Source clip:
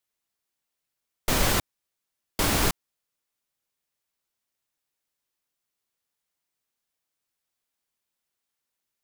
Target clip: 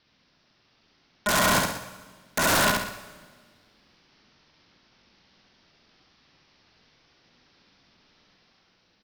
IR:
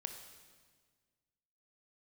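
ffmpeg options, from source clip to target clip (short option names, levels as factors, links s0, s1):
-filter_complex "[0:a]lowshelf=f=140:g=11,dynaudnorm=f=160:g=9:m=1.58,alimiter=limit=0.2:level=0:latency=1:release=14,acontrast=62,aresample=11025,asoftclip=type=hard:threshold=0.106,aresample=44100,aeval=exprs='val(0)*sin(2*PI*190*n/s)':c=same,aeval=exprs='0.168*sin(PI/2*7.94*val(0)/0.168)':c=same,asetrate=48091,aresample=44100,atempo=0.917004,aecho=1:1:69|138|207|276:0.708|0.219|0.068|0.0211,asplit=2[s0][s1];[1:a]atrim=start_sample=2205,adelay=118[s2];[s1][s2]afir=irnorm=-1:irlink=0,volume=0.398[s3];[s0][s3]amix=inputs=2:normalize=0,volume=0.596"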